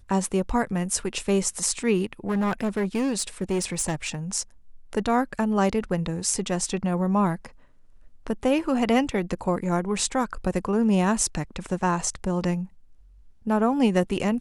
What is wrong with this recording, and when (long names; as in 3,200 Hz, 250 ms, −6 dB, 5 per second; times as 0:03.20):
0:02.13–0:04.15: clipping −20.5 dBFS